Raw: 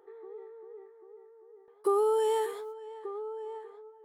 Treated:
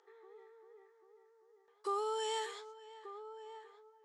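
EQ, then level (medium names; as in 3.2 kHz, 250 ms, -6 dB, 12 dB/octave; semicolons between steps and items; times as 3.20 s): band-pass filter 7 kHz, Q 1.8; distance through air 160 m; +18.0 dB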